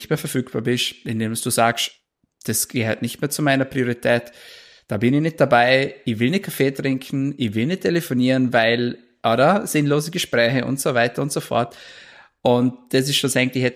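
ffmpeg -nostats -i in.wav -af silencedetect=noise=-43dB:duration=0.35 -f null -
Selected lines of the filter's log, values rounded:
silence_start: 1.92
silence_end: 2.41 | silence_duration: 0.49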